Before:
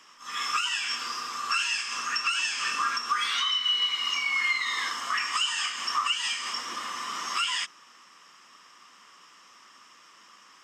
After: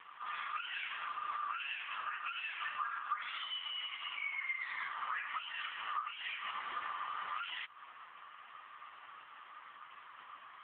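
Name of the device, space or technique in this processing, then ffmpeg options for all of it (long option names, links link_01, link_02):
voicemail: -filter_complex "[0:a]asettb=1/sr,asplit=3[link_01][link_02][link_03];[link_01]atrim=end=1.914[link_04];[link_02]atrim=start=1.91:end=3.46,asetpts=PTS-STARTPTS,afade=type=in:duration=0.004:curve=qsin,afade=type=out:start_time=1.546:duration=0.004:curve=qsin,bandreject=frequency=89.91:width_type=h:width=4,bandreject=frequency=179.82:width_type=h:width=4,bandreject=frequency=269.73:width_type=h:width=4,bandreject=frequency=359.64:width_type=h:width=4,bandreject=frequency=449.55:width_type=h:width=4,bandreject=frequency=539.46:width_type=h:width=4,bandreject=frequency=629.37:width_type=h:width=4,bandreject=frequency=719.28:width_type=h:width=4,bandreject=frequency=809.19:width_type=h:width=4,bandreject=frequency=899.1:width_type=h:width=4,bandreject=frequency=989.01:width_type=h:width=4,bandreject=frequency=1078.92:width_type=h:width=4,bandreject=frequency=1168.83:width_type=h:width=4,bandreject=frequency=1258.74:width_type=h:width=4,bandreject=frequency=1348.65:width_type=h:width=4,bandreject=frequency=1438.56:width_type=h:width=4,bandreject=frequency=1528.47:width_type=h:width=4,bandreject=frequency=1618.38:width_type=h:width=4,bandreject=frequency=1708.29:width_type=h:width=4,bandreject=frequency=1798.2:width_type=h:width=4,bandreject=frequency=1888.11:width_type=h:width=4,bandreject=frequency=1978.02:width_type=h:width=4,bandreject=frequency=2067.93:width_type=h:width=4,bandreject=frequency=2157.84:width_type=h:width=4,bandreject=frequency=2247.75:width_type=h:width=4,bandreject=frequency=2337.66:width_type=h:width=4,bandreject=frequency=2427.57:width_type=h:width=4,bandreject=frequency=2517.48:width_type=h:width=4[link_05];[link_03]atrim=start=3.456[link_06];[link_04][link_05]acrossfade=duration=0.004:curve1=hsin:curve2=qsin[link_07];[link_07][link_06]acrossfade=duration=0.004:curve1=qsin:curve2=hsin,highpass=420,lowpass=2600,acompressor=threshold=-41dB:ratio=6,volume=7dB" -ar 8000 -c:a libopencore_amrnb -b:a 4750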